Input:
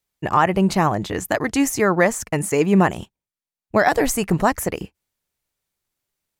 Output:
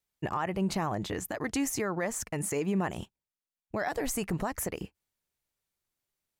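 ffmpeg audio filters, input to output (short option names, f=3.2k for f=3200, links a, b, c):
-af "alimiter=limit=-15.5dB:level=0:latency=1:release=124,volume=-6dB"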